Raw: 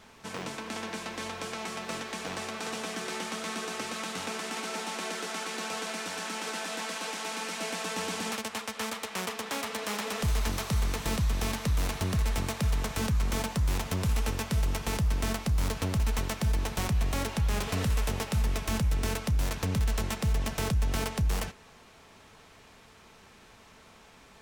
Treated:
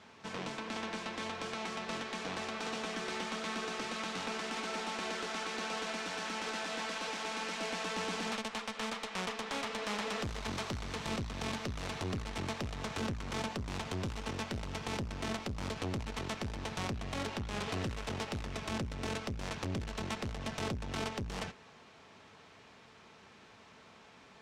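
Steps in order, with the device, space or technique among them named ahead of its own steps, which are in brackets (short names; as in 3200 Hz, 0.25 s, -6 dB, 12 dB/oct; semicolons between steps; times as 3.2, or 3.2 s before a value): valve radio (BPF 97–5600 Hz; tube stage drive 26 dB, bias 0.5; core saturation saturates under 290 Hz)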